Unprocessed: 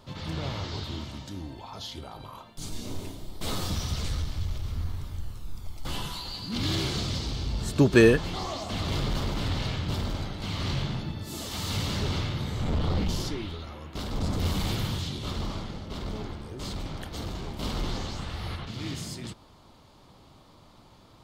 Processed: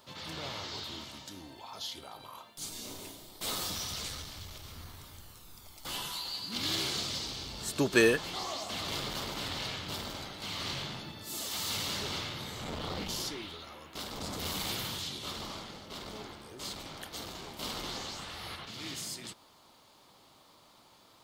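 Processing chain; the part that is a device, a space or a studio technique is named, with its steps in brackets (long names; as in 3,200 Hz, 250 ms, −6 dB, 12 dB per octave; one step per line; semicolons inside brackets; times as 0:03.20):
turntable without a phono preamp (RIAA equalisation recording; white noise bed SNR 37 dB)
high-shelf EQ 4,500 Hz −8.5 dB
level −3 dB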